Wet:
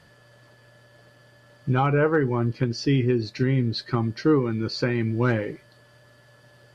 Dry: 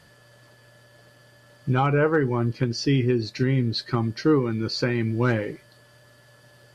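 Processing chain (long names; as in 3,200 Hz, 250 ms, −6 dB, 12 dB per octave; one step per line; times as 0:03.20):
high-shelf EQ 5,600 Hz −7 dB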